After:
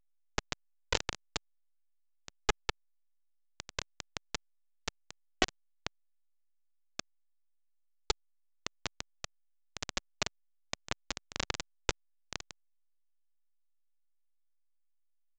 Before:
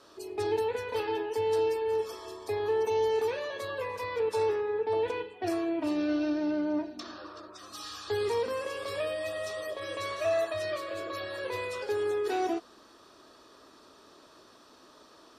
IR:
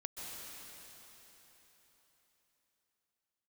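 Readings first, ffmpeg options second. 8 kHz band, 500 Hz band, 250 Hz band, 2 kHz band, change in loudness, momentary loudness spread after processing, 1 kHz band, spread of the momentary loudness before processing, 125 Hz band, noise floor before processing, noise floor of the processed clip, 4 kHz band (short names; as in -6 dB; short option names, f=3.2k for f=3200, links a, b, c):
+5.0 dB, -18.5 dB, -16.0 dB, -3.0 dB, -8.0 dB, 14 LU, -9.0 dB, 9 LU, -2.5 dB, -57 dBFS, -72 dBFS, +2.0 dB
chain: -filter_complex "[0:a]aemphasis=mode=production:type=bsi,acompressor=threshold=-38dB:ratio=16,afftfilt=real='re*gte(hypot(re,im),0.001)':imag='im*gte(hypot(re,im),0.001)':win_size=1024:overlap=0.75,lowpass=4.4k,asplit=2[a][b];[b]adelay=154,lowpass=f=1.5k:p=1,volume=-22dB,asplit=2[c][d];[d]adelay=154,lowpass=f=1.5k:p=1,volume=0.35[e];[a][c][e]amix=inputs=3:normalize=0,asoftclip=type=tanh:threshold=-34.5dB,dynaudnorm=f=210:g=3:m=6.5dB,acrusher=bits=4:mix=0:aa=0.000001,lowshelf=f=140:g=8.5,volume=11dB" -ar 16000 -c:a pcm_alaw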